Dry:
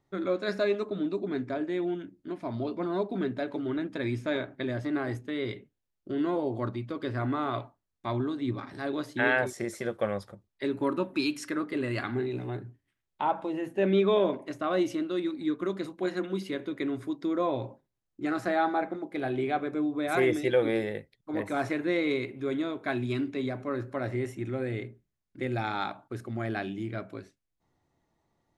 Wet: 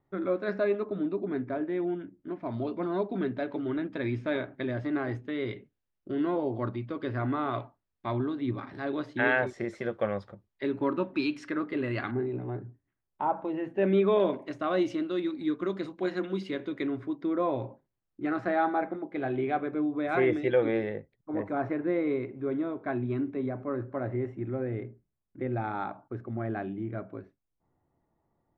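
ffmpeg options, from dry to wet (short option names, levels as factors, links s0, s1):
-af "asetnsamples=n=441:p=0,asendcmd='2.46 lowpass f 3200;12.11 lowpass f 1300;13.45 lowpass f 2500;14.2 lowpass f 4700;16.87 lowpass f 2400;20.95 lowpass f 1300',lowpass=2000"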